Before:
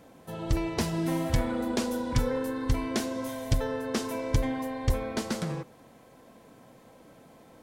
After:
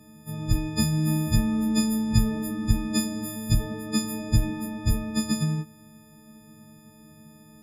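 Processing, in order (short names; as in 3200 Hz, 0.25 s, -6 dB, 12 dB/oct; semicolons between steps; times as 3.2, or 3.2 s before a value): frequency quantiser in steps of 6 st; resonant low shelf 320 Hz +13 dB, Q 1.5; gain -7 dB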